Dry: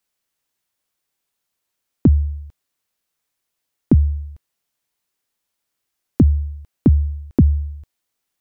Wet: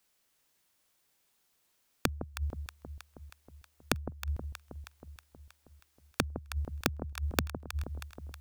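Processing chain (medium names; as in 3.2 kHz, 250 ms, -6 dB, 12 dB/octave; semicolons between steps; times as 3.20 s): inverted gate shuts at -20 dBFS, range -31 dB; integer overflow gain 14.5 dB; echo whose repeats swap between lows and highs 159 ms, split 900 Hz, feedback 77%, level -8 dB; trim +4 dB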